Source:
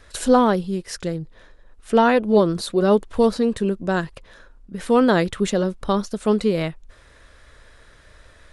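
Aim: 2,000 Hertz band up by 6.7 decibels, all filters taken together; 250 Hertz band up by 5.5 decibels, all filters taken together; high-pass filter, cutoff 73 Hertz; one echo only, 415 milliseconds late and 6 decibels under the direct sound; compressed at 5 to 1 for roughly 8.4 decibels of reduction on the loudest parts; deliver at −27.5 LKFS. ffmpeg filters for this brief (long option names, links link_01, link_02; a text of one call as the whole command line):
ffmpeg -i in.wav -af "highpass=73,equalizer=frequency=250:width_type=o:gain=6.5,equalizer=frequency=2000:width_type=o:gain=9,acompressor=threshold=-17dB:ratio=5,aecho=1:1:415:0.501,volume=-5dB" out.wav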